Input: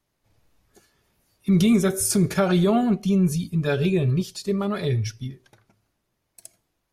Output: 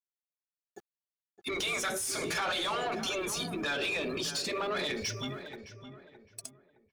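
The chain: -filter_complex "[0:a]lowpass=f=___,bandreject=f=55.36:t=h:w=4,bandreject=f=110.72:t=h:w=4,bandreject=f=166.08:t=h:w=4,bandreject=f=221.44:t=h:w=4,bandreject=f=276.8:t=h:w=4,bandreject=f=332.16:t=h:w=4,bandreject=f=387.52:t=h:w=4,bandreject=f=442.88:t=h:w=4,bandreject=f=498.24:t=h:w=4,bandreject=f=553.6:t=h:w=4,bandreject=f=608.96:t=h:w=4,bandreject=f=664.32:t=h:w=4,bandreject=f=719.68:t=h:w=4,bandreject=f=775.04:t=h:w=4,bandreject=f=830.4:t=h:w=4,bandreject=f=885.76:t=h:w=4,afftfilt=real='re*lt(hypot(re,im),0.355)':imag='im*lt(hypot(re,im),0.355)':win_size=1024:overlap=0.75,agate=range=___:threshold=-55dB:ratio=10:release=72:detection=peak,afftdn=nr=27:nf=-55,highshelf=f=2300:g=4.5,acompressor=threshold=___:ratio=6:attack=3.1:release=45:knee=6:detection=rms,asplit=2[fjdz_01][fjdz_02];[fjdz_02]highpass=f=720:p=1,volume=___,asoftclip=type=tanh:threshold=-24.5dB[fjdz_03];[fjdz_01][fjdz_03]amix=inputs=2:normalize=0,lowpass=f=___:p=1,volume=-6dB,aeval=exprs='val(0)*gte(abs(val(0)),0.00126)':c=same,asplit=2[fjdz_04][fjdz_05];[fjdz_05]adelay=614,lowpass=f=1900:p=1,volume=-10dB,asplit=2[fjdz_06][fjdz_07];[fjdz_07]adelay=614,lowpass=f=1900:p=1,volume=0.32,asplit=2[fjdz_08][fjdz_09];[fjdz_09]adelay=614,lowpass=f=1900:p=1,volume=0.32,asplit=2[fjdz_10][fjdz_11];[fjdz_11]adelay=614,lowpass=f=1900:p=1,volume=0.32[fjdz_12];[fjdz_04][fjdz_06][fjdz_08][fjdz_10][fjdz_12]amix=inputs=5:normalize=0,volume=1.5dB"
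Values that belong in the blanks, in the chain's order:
11000, -8dB, -38dB, 18dB, 5700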